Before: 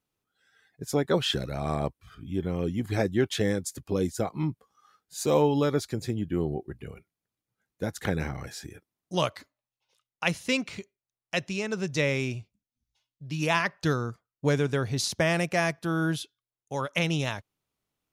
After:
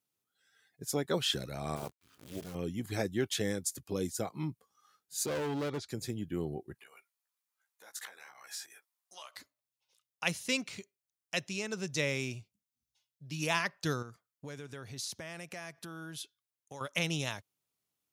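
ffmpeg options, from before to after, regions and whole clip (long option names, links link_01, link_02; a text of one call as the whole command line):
ffmpeg -i in.wav -filter_complex "[0:a]asettb=1/sr,asplit=3[link_01][link_02][link_03];[link_01]atrim=end=1.764[link_04];[link_02]atrim=start=1.76:end=2.55,asetpts=PTS-STARTPTS,afade=type=in:duration=0.004:curve=qsin,afade=type=out:start_time=0.786:duration=0.004:curve=qsin,lowshelf=frequency=71:gain=-6,acrusher=bits=8:dc=4:mix=0:aa=0.000001,tremolo=f=270:d=0.857[link_05];[link_03]atrim=start=2.546[link_06];[link_04][link_05]acrossfade=duration=0.004:curve1=hsin:curve2=qsin[link_07];[link_07][link_06]acrossfade=duration=0.004:curve1=qsin:curve2=hsin,asettb=1/sr,asplit=3[link_08][link_09][link_10];[link_08]atrim=end=5.264[link_11];[link_09]atrim=start=5.26:end=5.89,asetpts=PTS-STARTPTS,afade=type=in:duration=0.004:curve=qsin,afade=type=out:start_time=0.626:duration=0.004:curve=qsin,lowpass=3800,asoftclip=type=hard:threshold=-24.5dB[link_12];[link_10]atrim=start=5.886[link_13];[link_11][link_12]acrossfade=duration=0.004:curve1=hsin:curve2=qsin[link_14];[link_14][link_13]acrossfade=duration=0.004:curve1=qsin:curve2=hsin,asettb=1/sr,asplit=3[link_15][link_16][link_17];[link_15]atrim=end=6.744[link_18];[link_16]atrim=start=6.74:end=9.35,asetpts=PTS-STARTPTS,afade=type=in:duration=0.004:curve=qsin,afade=type=out:start_time=2.606:duration=0.004:curve=qsin,asplit=2[link_19][link_20];[link_20]adelay=15,volume=-3dB[link_21];[link_19][link_21]amix=inputs=2:normalize=0,atrim=end_sample=115101,acompressor=threshold=-36dB:ratio=12:attack=3.2:release=140:knee=1:detection=peak,highpass=frequency=980:width_type=q:width=1.5[link_22];[link_17]atrim=start=9.346[link_23];[link_18][link_22]acrossfade=duration=0.004:curve1=hsin:curve2=qsin[link_24];[link_24][link_23]acrossfade=duration=0.004:curve1=qsin:curve2=hsin,asettb=1/sr,asplit=3[link_25][link_26][link_27];[link_25]atrim=end=14.024[link_28];[link_26]atrim=start=14.02:end=16.81,asetpts=PTS-STARTPTS,afade=type=in:duration=0.004:curve=qsin,afade=type=out:start_time=2.786:duration=0.004:curve=qsin,equalizer=frequency=1500:width=0.59:gain=3,acompressor=threshold=-36dB:ratio=4:attack=3.2:release=140:knee=1:detection=peak[link_29];[link_27]atrim=start=16.806[link_30];[link_28][link_29]acrossfade=duration=0.004:curve1=hsin:curve2=qsin[link_31];[link_31][link_30]acrossfade=duration=0.004:curve1=qsin:curve2=hsin,highpass=82,highshelf=frequency=4000:gain=10.5,volume=-7.5dB" out.wav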